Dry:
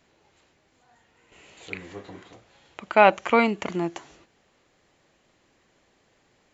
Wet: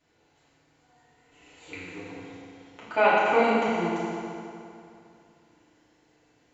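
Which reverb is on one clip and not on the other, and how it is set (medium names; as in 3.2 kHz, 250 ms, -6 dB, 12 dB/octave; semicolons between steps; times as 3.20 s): FDN reverb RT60 2.6 s, high-frequency decay 0.8×, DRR -10 dB; trim -11.5 dB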